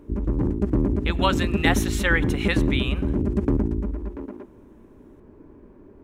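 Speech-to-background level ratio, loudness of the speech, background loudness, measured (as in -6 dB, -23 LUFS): -1.0 dB, -26.0 LUFS, -25.0 LUFS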